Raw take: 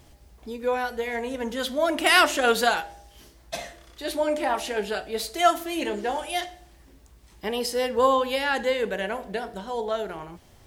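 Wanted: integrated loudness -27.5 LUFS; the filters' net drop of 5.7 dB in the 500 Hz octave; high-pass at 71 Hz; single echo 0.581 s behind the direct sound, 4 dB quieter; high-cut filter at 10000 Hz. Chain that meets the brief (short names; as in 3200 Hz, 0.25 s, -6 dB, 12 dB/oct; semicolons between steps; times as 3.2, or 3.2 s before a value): HPF 71 Hz; LPF 10000 Hz; bell 500 Hz -7 dB; echo 0.581 s -4 dB; gain -1 dB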